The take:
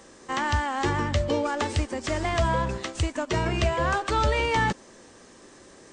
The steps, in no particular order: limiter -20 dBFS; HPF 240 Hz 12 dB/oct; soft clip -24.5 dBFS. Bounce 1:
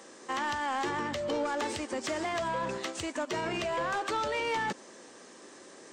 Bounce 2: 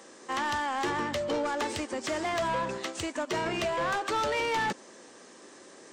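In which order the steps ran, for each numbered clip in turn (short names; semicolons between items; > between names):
limiter > HPF > soft clip; HPF > soft clip > limiter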